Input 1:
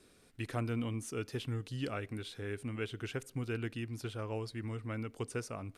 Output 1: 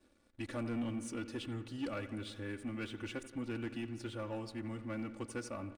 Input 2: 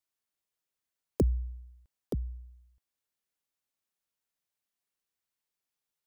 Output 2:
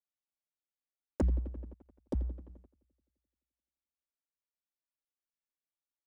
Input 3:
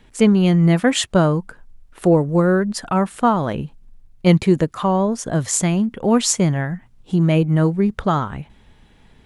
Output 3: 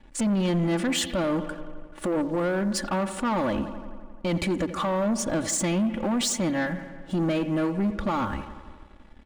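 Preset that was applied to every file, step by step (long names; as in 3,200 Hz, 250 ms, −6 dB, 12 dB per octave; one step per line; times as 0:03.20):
comb filter 3.5 ms, depth 87%
downsampling to 22,050 Hz
brickwall limiter −12.5 dBFS
bucket-brigade delay 86 ms, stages 2,048, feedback 73%, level −15.5 dB
leveller curve on the samples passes 2
one half of a high-frequency compander decoder only
level −9 dB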